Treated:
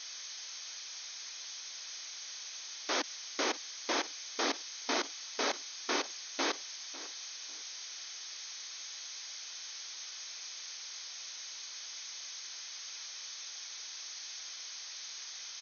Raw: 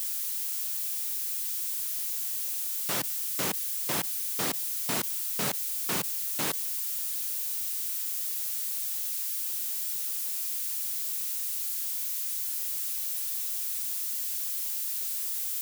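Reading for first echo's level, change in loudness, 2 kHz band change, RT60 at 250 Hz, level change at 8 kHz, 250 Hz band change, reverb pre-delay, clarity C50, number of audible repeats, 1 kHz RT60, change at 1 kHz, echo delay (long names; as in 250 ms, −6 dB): −17.0 dB, −10.0 dB, +0.5 dB, no reverb audible, −7.5 dB, −2.0 dB, no reverb audible, no reverb audible, 2, no reverb audible, +1.0 dB, 550 ms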